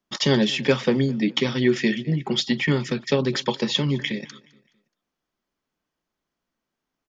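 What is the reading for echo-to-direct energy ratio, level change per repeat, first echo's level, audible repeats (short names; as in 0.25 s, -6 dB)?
-22.0 dB, -8.5 dB, -22.5 dB, 2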